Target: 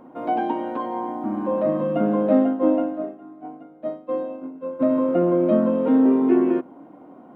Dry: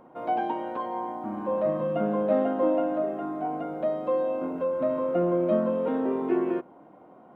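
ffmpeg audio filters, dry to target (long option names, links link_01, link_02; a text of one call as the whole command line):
ffmpeg -i in.wav -filter_complex "[0:a]asplit=3[link_01][link_02][link_03];[link_01]afade=type=out:start_time=2.35:duration=0.02[link_04];[link_02]agate=range=-33dB:threshold=-20dB:ratio=3:detection=peak,afade=type=in:start_time=2.35:duration=0.02,afade=type=out:start_time=4.79:duration=0.02[link_05];[link_03]afade=type=in:start_time=4.79:duration=0.02[link_06];[link_04][link_05][link_06]amix=inputs=3:normalize=0,equalizer=frequency=270:width_type=o:width=0.5:gain=10.5,volume=3dB" out.wav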